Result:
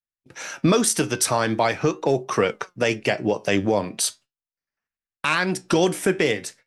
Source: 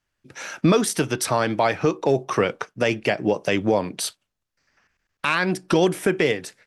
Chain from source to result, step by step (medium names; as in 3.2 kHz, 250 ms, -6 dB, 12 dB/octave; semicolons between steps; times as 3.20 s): gate -48 dBFS, range -24 dB; dynamic bell 7.6 kHz, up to +7 dB, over -43 dBFS, Q 0.9; flange 0.41 Hz, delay 4.1 ms, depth 6.5 ms, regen +80%; trim +4 dB